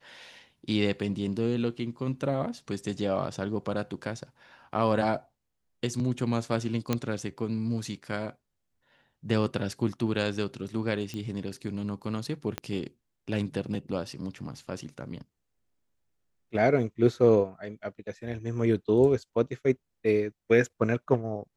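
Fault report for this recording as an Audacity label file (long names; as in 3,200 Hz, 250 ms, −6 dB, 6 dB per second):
6.930000	6.930000	click −12 dBFS
11.140000	11.140000	click −23 dBFS
12.580000	12.580000	click −16 dBFS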